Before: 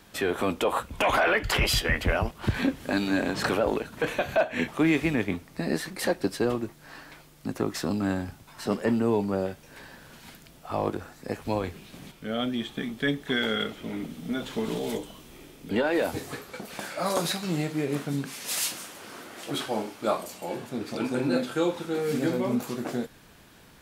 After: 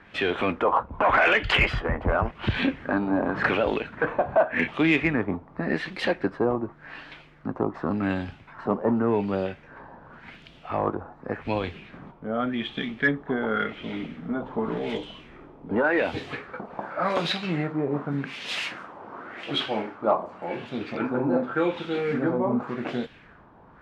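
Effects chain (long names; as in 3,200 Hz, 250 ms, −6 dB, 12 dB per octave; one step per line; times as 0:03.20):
auto-filter low-pass sine 0.88 Hz 920–3,200 Hz
harmonic generator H 5 −33 dB, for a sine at −8.5 dBFS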